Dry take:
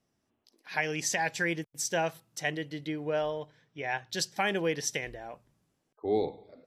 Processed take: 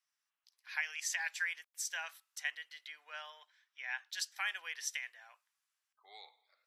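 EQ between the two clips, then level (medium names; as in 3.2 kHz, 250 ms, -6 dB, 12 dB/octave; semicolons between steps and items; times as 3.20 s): high-pass 1.2 kHz 24 dB/octave; dynamic bell 5.3 kHz, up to -3 dB, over -47 dBFS, Q 0.99; -4.0 dB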